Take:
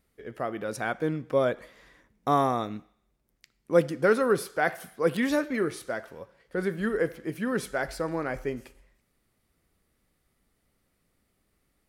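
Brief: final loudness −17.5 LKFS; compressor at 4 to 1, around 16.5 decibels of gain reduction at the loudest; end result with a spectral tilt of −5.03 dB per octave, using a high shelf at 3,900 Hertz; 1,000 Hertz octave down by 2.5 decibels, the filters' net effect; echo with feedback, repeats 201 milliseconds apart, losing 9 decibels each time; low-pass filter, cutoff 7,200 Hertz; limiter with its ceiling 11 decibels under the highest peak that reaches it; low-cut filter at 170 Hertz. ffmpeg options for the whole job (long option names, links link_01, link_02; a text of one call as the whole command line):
ffmpeg -i in.wav -af "highpass=170,lowpass=7200,equalizer=frequency=1000:width_type=o:gain=-3,highshelf=frequency=3900:gain=-7,acompressor=threshold=-38dB:ratio=4,alimiter=level_in=9.5dB:limit=-24dB:level=0:latency=1,volume=-9.5dB,aecho=1:1:201|402|603|804:0.355|0.124|0.0435|0.0152,volume=27dB" out.wav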